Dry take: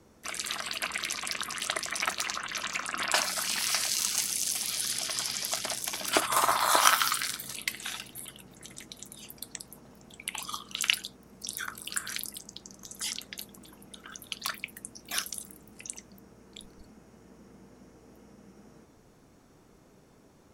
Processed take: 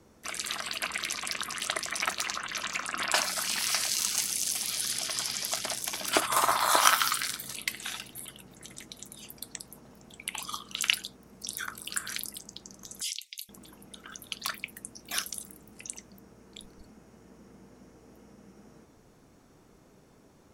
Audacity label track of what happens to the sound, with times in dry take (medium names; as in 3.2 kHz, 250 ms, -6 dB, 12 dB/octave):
13.010000	13.490000	steep high-pass 2.2 kHz 72 dB/octave